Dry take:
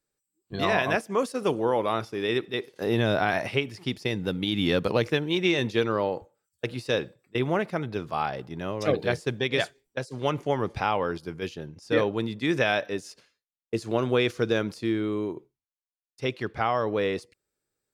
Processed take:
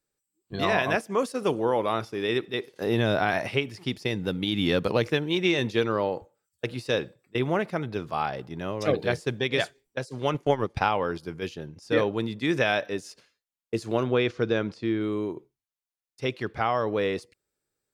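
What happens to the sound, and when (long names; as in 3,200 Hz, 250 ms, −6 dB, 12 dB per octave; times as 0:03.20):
0:10.34–0:10.89: transient designer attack +5 dB, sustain −11 dB
0:14.03–0:15.01: high-frequency loss of the air 120 metres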